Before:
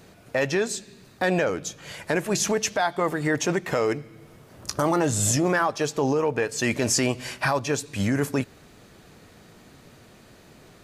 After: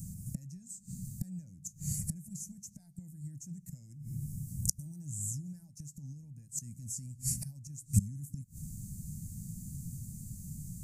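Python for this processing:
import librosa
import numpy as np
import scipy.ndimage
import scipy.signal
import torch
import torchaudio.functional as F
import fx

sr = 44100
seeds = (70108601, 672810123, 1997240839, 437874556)

y = fx.gate_flip(x, sr, shuts_db=-21.0, range_db=-25)
y = scipy.signal.sosfilt(scipy.signal.ellip(3, 1.0, 40, [170.0, 7500.0], 'bandstop', fs=sr, output='sos'), y)
y = F.gain(torch.from_numpy(y), 13.0).numpy()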